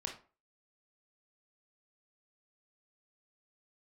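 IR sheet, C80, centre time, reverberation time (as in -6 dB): 14.5 dB, 20 ms, 0.40 s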